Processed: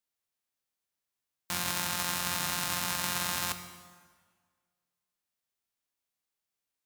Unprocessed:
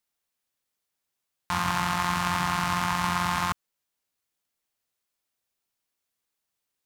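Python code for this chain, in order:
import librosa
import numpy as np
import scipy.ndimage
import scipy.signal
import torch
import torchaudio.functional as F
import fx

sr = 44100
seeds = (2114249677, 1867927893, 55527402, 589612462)

y = fx.envelope_flatten(x, sr, power=0.3)
y = fx.rev_plate(y, sr, seeds[0], rt60_s=1.7, hf_ratio=0.8, predelay_ms=0, drr_db=9.0)
y = F.gain(torch.from_numpy(y), -6.0).numpy()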